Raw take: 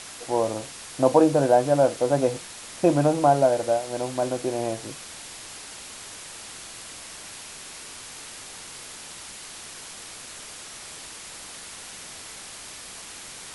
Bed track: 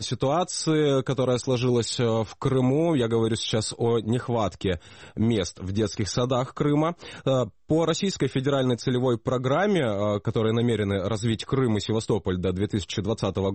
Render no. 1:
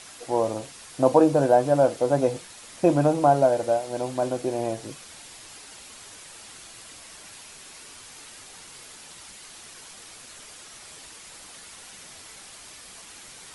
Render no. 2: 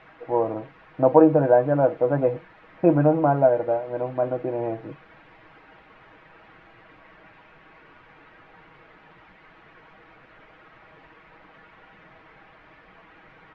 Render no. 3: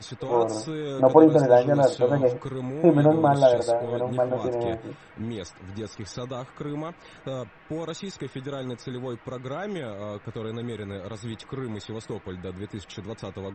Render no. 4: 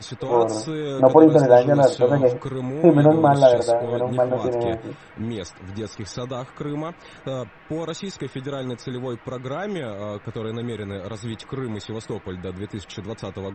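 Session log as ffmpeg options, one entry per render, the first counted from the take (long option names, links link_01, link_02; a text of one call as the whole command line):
ffmpeg -i in.wav -af "afftdn=noise_reduction=6:noise_floor=-41" out.wav
ffmpeg -i in.wav -af "lowpass=frequency=2100:width=0.5412,lowpass=frequency=2100:width=1.3066,aecho=1:1:6.3:0.47" out.wav
ffmpeg -i in.wav -i bed.wav -filter_complex "[1:a]volume=-10dB[link_01];[0:a][link_01]amix=inputs=2:normalize=0" out.wav
ffmpeg -i in.wav -af "volume=4dB,alimiter=limit=-1dB:level=0:latency=1" out.wav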